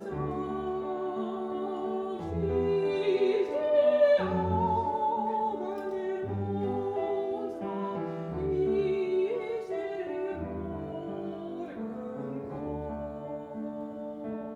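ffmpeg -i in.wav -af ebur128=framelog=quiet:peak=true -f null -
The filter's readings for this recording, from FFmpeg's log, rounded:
Integrated loudness:
  I:         -31.0 LUFS
  Threshold: -41.0 LUFS
Loudness range:
  LRA:        10.5 LU
  Threshold: -50.5 LUFS
  LRA low:   -37.3 LUFS
  LRA high:  -26.9 LUFS
True peak:
  Peak:      -13.4 dBFS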